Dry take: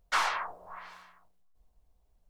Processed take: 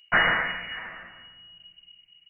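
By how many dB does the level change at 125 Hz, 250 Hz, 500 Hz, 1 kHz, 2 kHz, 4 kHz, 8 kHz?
can't be measured, +20.0 dB, +10.5 dB, +2.5 dB, +12.0 dB, +8.5 dB, below −35 dB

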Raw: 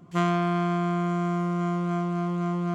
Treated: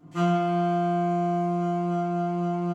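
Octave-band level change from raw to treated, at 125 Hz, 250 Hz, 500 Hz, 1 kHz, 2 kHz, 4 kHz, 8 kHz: −1.0 dB, 0.0 dB, +4.5 dB, +2.5 dB, −4.5 dB, −1.5 dB, can't be measured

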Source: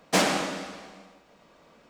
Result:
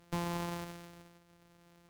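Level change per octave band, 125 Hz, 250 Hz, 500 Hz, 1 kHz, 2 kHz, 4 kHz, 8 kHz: −2.0, −9.0, −14.0, −11.5, −17.0, −18.0, −18.5 decibels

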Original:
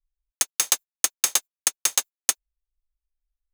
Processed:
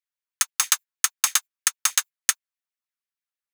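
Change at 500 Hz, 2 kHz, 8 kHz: below −10 dB, +4.5 dB, +0.5 dB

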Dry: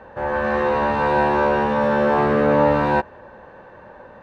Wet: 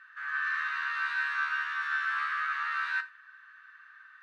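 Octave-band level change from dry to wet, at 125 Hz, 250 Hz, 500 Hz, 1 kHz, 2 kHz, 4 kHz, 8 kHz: below −40 dB, below −40 dB, below −40 dB, −15.0 dB, −2.0 dB, −5.0 dB, can't be measured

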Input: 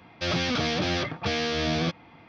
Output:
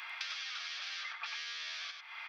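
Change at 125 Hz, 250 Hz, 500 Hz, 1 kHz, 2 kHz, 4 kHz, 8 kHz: below −40 dB, below −40 dB, −37.5 dB, −16.0 dB, −9.0 dB, −10.0 dB, can't be measured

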